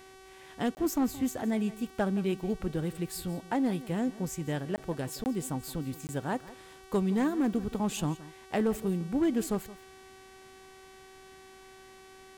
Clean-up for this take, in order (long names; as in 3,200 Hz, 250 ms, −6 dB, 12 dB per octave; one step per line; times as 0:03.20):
clipped peaks rebuilt −21 dBFS
hum removal 380.4 Hz, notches 33
repair the gap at 0:00.75/0:04.76/0:05.24/0:06.07, 19 ms
echo removal 171 ms −18 dB